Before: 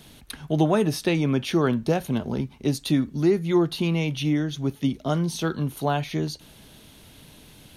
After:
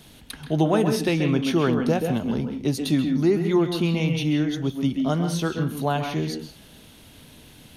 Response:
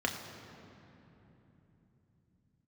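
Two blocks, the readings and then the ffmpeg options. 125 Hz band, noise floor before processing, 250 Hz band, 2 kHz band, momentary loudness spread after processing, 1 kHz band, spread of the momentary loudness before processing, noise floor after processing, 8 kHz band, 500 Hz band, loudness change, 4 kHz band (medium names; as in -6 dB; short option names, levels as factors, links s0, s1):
+1.0 dB, -50 dBFS, +1.5 dB, +1.5 dB, 7 LU, +1.0 dB, 7 LU, -49 dBFS, 0.0 dB, +1.0 dB, +1.5 dB, +1.0 dB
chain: -filter_complex "[0:a]asplit=2[s0][s1];[1:a]atrim=start_sample=2205,atrim=end_sample=4410,adelay=131[s2];[s1][s2]afir=irnorm=-1:irlink=0,volume=0.266[s3];[s0][s3]amix=inputs=2:normalize=0"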